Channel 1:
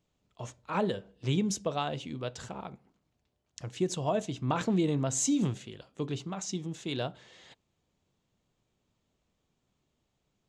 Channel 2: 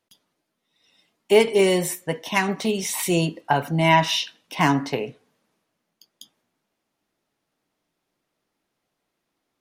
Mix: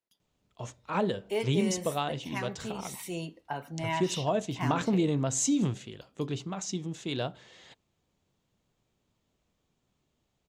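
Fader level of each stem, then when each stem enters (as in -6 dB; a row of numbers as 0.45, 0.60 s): +1.0, -15.5 dB; 0.20, 0.00 s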